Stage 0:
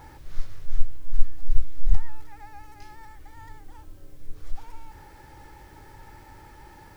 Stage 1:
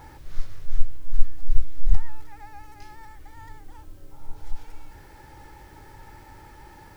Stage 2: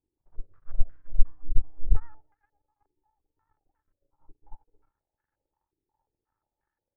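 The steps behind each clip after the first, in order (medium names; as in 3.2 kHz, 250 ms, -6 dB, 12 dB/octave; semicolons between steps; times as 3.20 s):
spectral replace 4.14–5.09 s, 560–1400 Hz after; trim +1 dB
power-law waveshaper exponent 2; step-sequenced low-pass 5.6 Hz 360–1600 Hz; trim -2 dB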